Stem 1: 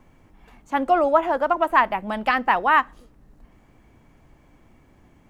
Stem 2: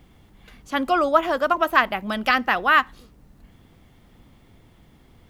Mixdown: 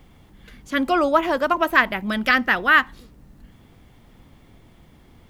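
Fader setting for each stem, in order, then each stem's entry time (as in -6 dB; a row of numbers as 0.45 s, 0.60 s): -5.0 dB, +1.5 dB; 0.00 s, 0.00 s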